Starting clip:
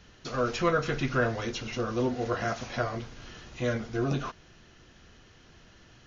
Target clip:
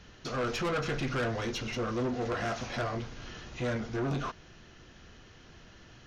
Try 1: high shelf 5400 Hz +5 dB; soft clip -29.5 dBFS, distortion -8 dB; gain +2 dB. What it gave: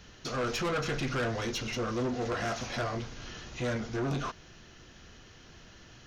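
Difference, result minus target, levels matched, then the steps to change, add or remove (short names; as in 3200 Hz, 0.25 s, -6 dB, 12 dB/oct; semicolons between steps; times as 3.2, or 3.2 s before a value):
8000 Hz band +4.0 dB
change: high shelf 5400 Hz -3 dB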